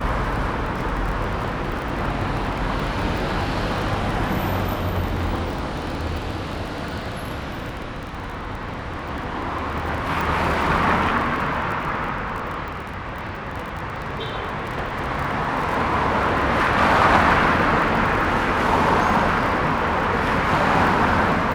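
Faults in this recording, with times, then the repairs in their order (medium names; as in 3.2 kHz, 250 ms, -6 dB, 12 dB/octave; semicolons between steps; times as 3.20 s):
crackle 27 per s -27 dBFS
10.21 s: pop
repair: de-click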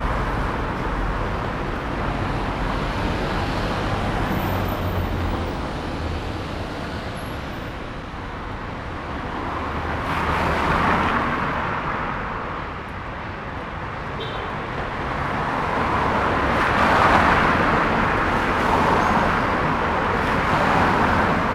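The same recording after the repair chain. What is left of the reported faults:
nothing left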